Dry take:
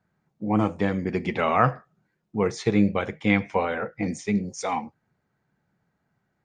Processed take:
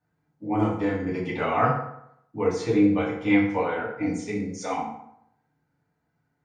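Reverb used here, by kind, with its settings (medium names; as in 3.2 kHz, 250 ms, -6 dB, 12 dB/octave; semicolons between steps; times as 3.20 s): FDN reverb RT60 0.75 s, low-frequency decay 0.95×, high-frequency decay 0.65×, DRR -6.5 dB; trim -9 dB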